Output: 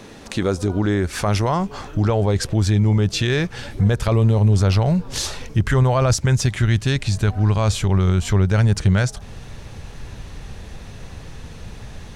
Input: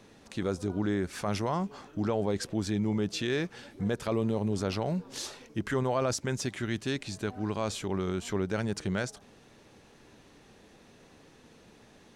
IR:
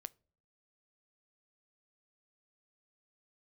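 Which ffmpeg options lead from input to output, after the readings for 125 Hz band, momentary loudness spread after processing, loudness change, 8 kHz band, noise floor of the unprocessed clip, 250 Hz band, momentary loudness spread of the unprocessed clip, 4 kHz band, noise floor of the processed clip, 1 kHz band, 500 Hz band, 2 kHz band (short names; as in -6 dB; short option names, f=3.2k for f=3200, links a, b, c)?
+19.0 dB, 21 LU, +13.0 dB, +11.0 dB, -58 dBFS, +9.0 dB, 6 LU, +11.0 dB, -38 dBFS, +10.0 dB, +8.0 dB, +10.5 dB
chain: -filter_complex "[0:a]asubboost=boost=10.5:cutoff=88,asplit=2[a][b];[b]acompressor=threshold=-39dB:ratio=6,volume=1.5dB[c];[a][c]amix=inputs=2:normalize=0,volume=8.5dB"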